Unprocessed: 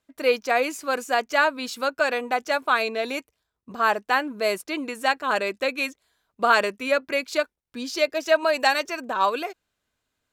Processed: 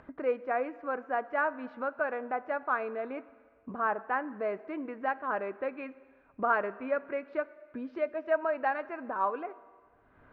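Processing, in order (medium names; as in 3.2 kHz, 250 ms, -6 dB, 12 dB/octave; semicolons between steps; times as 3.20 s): low-pass 1.7 kHz 24 dB/octave; upward compressor, threshold -25 dBFS; plate-style reverb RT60 1.7 s, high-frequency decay 1×, DRR 16 dB; trim -8 dB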